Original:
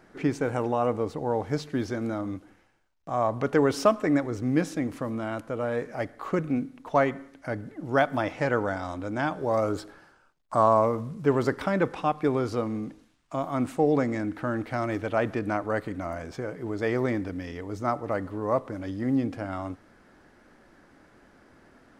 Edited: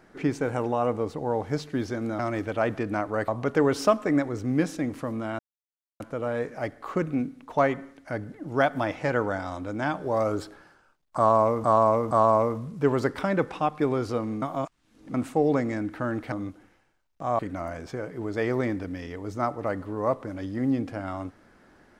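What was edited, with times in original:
2.19–3.26 s: swap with 14.75–15.84 s
5.37 s: insert silence 0.61 s
10.54–11.01 s: loop, 3 plays
12.85–13.57 s: reverse

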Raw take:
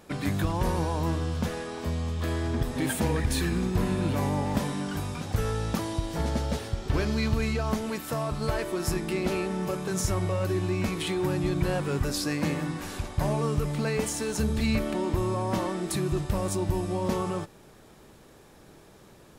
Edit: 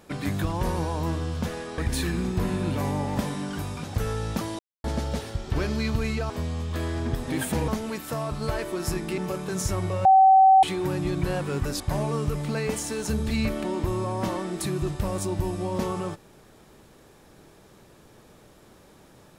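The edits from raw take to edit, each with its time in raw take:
1.78–3.16 s: move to 7.68 s
5.97–6.22 s: mute
9.18–9.57 s: delete
10.44–11.02 s: bleep 766 Hz -11.5 dBFS
12.19–13.10 s: delete

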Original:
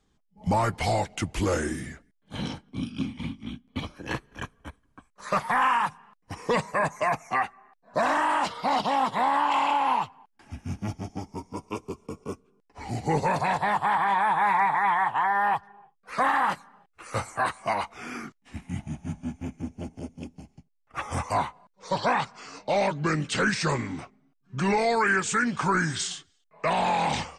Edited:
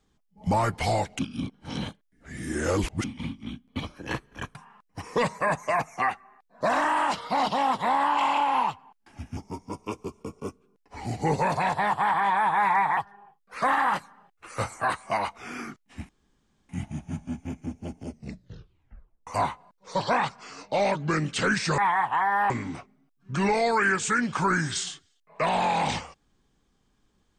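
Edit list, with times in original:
1.19–3.04 s: reverse
4.55–5.88 s: delete
10.70–11.21 s: delete
14.81–15.53 s: move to 23.74 s
18.65 s: insert room tone 0.60 s
20.03 s: tape stop 1.20 s

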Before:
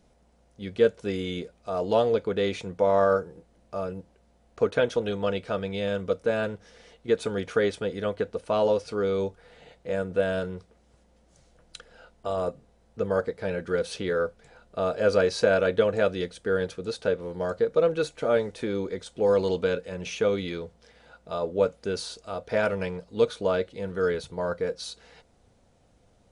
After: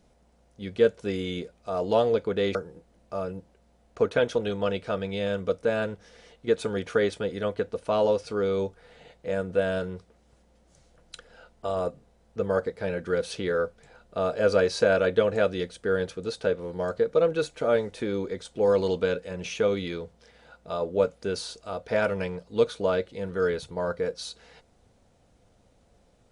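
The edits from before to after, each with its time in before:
2.55–3.16 s: delete

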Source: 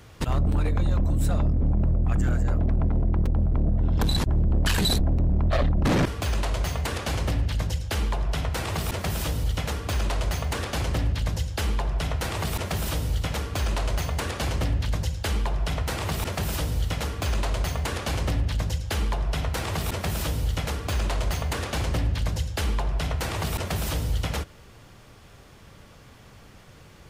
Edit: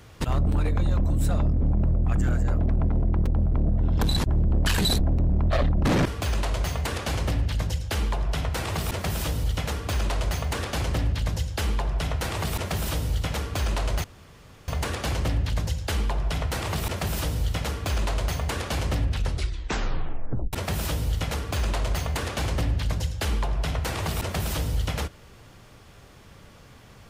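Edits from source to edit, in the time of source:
14.04 s: insert room tone 0.64 s
18.38 s: tape stop 1.51 s

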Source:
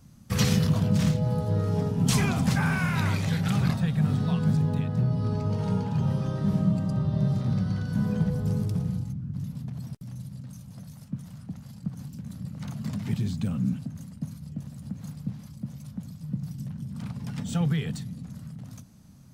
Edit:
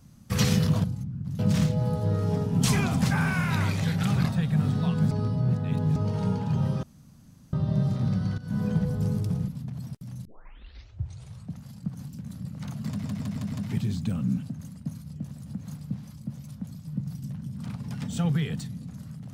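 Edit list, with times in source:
4.56–5.41 s: reverse
6.28–6.98 s: room tone
7.83–8.09 s: fade in, from -14 dB
8.93–9.48 s: move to 0.84 s
10.25 s: tape start 1.34 s
12.88 s: stutter 0.16 s, 5 plays

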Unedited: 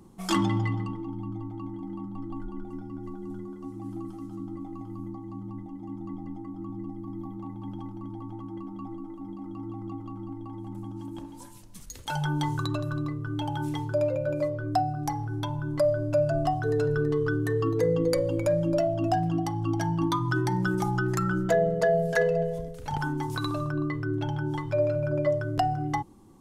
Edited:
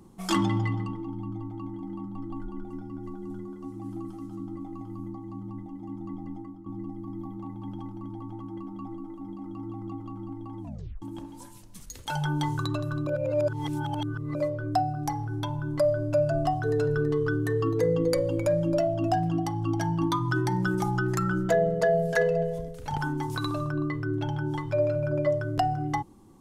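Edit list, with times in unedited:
6.39–6.66 s: fade out, to -13 dB
10.61 s: tape stop 0.41 s
13.07–14.35 s: reverse

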